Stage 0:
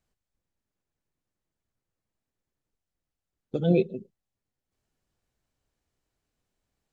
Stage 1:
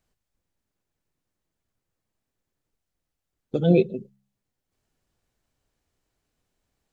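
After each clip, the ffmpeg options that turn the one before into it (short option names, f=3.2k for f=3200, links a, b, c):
-af "bandreject=f=67.47:t=h:w=4,bandreject=f=134.94:t=h:w=4,bandreject=f=202.41:t=h:w=4,volume=4dB"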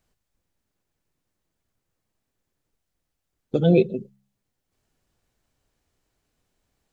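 -af "alimiter=limit=-10.5dB:level=0:latency=1:release=26,volume=3dB"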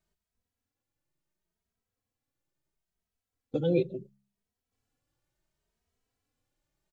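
-filter_complex "[0:a]asplit=2[a][b];[b]adelay=2.8,afreqshift=0.72[c];[a][c]amix=inputs=2:normalize=1,volume=-5.5dB"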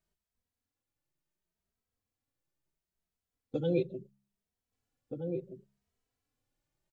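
-filter_complex "[0:a]asplit=2[a][b];[b]adelay=1574,volume=-6dB,highshelf=f=4k:g=-35.4[c];[a][c]amix=inputs=2:normalize=0,volume=-3.5dB"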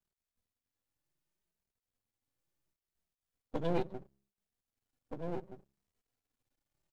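-af "aeval=exprs='max(val(0),0)':c=same,volume=1dB"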